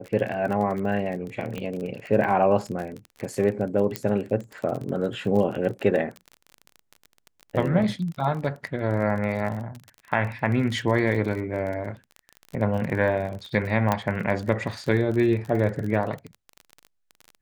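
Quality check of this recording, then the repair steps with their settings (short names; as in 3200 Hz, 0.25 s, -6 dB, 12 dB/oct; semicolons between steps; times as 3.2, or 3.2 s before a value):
crackle 30/s -30 dBFS
1.58 pop -19 dBFS
3.96 pop -10 dBFS
13.92 pop -9 dBFS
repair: de-click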